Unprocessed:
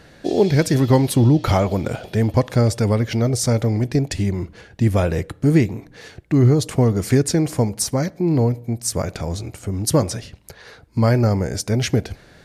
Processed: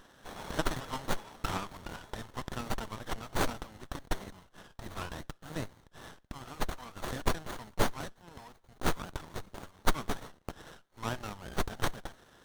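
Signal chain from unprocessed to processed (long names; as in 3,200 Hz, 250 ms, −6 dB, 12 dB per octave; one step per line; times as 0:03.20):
Bessel high-pass filter 1,900 Hz, order 6
windowed peak hold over 17 samples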